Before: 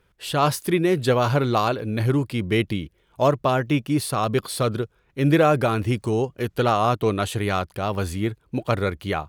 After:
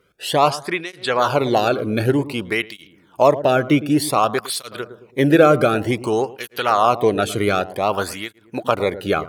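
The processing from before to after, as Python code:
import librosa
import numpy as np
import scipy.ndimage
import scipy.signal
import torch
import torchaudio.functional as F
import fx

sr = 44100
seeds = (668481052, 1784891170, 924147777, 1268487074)

p1 = fx.recorder_agc(x, sr, target_db=-10.5, rise_db_per_s=6.2, max_gain_db=30)
p2 = fx.lowpass(p1, sr, hz=6500.0, slope=12, at=(0.5, 1.19))
p3 = p2 + fx.echo_filtered(p2, sr, ms=110, feedback_pct=39, hz=840.0, wet_db=-13, dry=0)
p4 = fx.flanger_cancel(p3, sr, hz=0.54, depth_ms=1.2)
y = p4 * librosa.db_to_amplitude(6.5)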